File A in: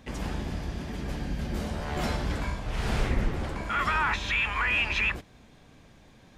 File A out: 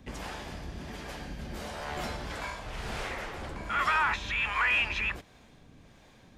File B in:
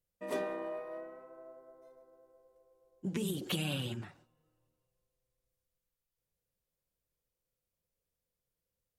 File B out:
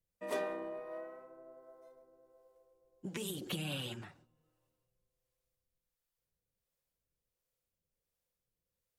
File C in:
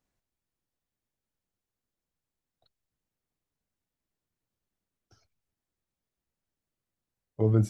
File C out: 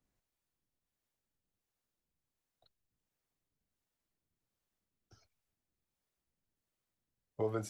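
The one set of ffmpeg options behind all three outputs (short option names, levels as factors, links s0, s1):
-filter_complex "[0:a]acrossover=split=460|2800[s0][s1][s2];[s0]acompressor=threshold=0.0126:ratio=6[s3];[s3][s1][s2]amix=inputs=3:normalize=0,acrossover=split=400[s4][s5];[s4]aeval=exprs='val(0)*(1-0.5/2+0.5/2*cos(2*PI*1.4*n/s))':c=same[s6];[s5]aeval=exprs='val(0)*(1-0.5/2-0.5/2*cos(2*PI*1.4*n/s))':c=same[s7];[s6][s7]amix=inputs=2:normalize=0,volume=1.12"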